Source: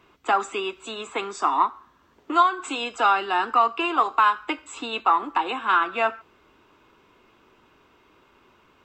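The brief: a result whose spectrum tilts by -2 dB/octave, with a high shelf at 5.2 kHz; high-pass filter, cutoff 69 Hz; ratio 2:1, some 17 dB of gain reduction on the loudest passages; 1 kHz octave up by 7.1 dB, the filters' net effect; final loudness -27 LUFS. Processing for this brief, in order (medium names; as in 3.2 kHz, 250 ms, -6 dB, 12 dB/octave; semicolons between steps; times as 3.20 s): high-pass 69 Hz; peaking EQ 1 kHz +8.5 dB; treble shelf 5.2 kHz -3.5 dB; compression 2:1, threshold -39 dBFS; trim +5 dB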